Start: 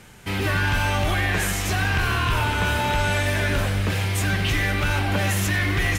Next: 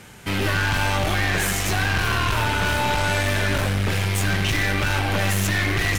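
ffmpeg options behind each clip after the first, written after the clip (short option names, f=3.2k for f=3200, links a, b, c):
-af "aeval=exprs='0.15*(abs(mod(val(0)/0.15+3,4)-2)-1)':c=same,highpass=f=58:p=1,aeval=exprs='(tanh(12.6*val(0)+0.5)-tanh(0.5))/12.6':c=same,volume=5.5dB"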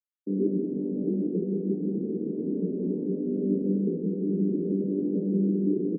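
-filter_complex "[0:a]asplit=2[a][b];[b]aecho=0:1:178:0.631[c];[a][c]amix=inputs=2:normalize=0,acrusher=bits=3:mix=0:aa=0.5,asuperpass=centerf=280:order=12:qfactor=1,volume=2.5dB"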